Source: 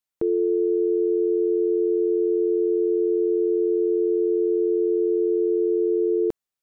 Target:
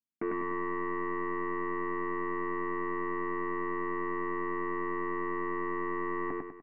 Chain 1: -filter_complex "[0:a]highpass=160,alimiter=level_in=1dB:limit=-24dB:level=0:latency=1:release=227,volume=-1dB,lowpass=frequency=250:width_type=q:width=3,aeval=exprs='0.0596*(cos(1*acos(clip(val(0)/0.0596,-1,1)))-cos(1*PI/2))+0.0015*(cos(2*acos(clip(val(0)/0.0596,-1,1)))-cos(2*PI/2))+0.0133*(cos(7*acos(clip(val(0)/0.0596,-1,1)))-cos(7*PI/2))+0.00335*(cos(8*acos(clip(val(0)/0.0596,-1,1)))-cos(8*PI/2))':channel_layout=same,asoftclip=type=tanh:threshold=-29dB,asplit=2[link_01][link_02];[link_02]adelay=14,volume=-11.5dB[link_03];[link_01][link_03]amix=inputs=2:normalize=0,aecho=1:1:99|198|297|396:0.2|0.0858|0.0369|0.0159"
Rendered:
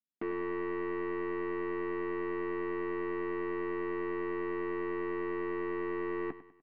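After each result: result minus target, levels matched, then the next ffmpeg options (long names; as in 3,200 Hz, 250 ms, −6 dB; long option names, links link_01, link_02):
soft clipping: distortion +19 dB; echo-to-direct −12 dB
-filter_complex "[0:a]highpass=160,alimiter=level_in=1dB:limit=-24dB:level=0:latency=1:release=227,volume=-1dB,lowpass=frequency=250:width_type=q:width=3,aeval=exprs='0.0596*(cos(1*acos(clip(val(0)/0.0596,-1,1)))-cos(1*PI/2))+0.0015*(cos(2*acos(clip(val(0)/0.0596,-1,1)))-cos(2*PI/2))+0.0133*(cos(7*acos(clip(val(0)/0.0596,-1,1)))-cos(7*PI/2))+0.00335*(cos(8*acos(clip(val(0)/0.0596,-1,1)))-cos(8*PI/2))':channel_layout=same,asoftclip=type=tanh:threshold=-18dB,asplit=2[link_01][link_02];[link_02]adelay=14,volume=-11.5dB[link_03];[link_01][link_03]amix=inputs=2:normalize=0,aecho=1:1:99|198|297|396:0.2|0.0858|0.0369|0.0159"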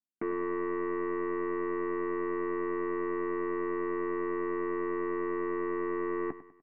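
echo-to-direct −12 dB
-filter_complex "[0:a]highpass=160,alimiter=level_in=1dB:limit=-24dB:level=0:latency=1:release=227,volume=-1dB,lowpass=frequency=250:width_type=q:width=3,aeval=exprs='0.0596*(cos(1*acos(clip(val(0)/0.0596,-1,1)))-cos(1*PI/2))+0.0015*(cos(2*acos(clip(val(0)/0.0596,-1,1)))-cos(2*PI/2))+0.0133*(cos(7*acos(clip(val(0)/0.0596,-1,1)))-cos(7*PI/2))+0.00335*(cos(8*acos(clip(val(0)/0.0596,-1,1)))-cos(8*PI/2))':channel_layout=same,asoftclip=type=tanh:threshold=-18dB,asplit=2[link_01][link_02];[link_02]adelay=14,volume=-11.5dB[link_03];[link_01][link_03]amix=inputs=2:normalize=0,aecho=1:1:99|198|297|396|495|594:0.794|0.342|0.147|0.0632|0.0272|0.0117"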